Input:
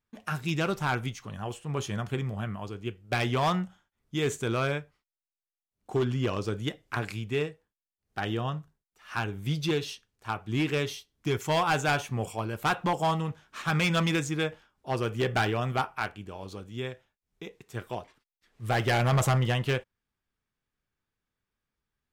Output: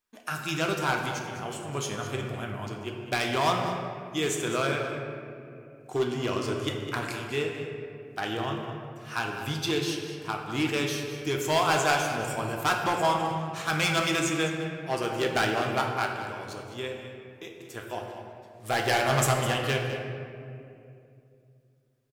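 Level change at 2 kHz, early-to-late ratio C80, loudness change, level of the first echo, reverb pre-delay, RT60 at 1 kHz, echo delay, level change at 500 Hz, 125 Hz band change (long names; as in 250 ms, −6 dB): +3.0 dB, 4.0 dB, +1.0 dB, −12.0 dB, 3 ms, 2.3 s, 205 ms, +2.5 dB, −3.5 dB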